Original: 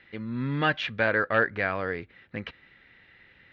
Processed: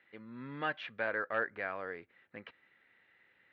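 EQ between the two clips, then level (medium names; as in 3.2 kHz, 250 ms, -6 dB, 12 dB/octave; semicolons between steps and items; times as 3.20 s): high-pass 670 Hz 6 dB/octave; low-pass 1.3 kHz 6 dB/octave; -5.5 dB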